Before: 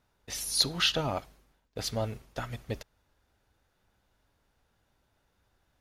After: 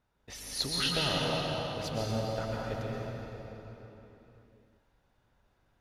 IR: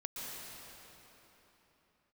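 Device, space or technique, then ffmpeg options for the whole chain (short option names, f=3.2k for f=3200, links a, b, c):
swimming-pool hall: -filter_complex "[1:a]atrim=start_sample=2205[a];[0:a][a]afir=irnorm=-1:irlink=0,highshelf=f=4.2k:g=-8,volume=1dB"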